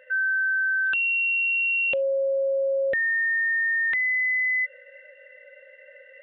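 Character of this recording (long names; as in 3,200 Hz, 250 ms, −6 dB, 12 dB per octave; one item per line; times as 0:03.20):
background noise floor −51 dBFS
spectral slope −7.0 dB per octave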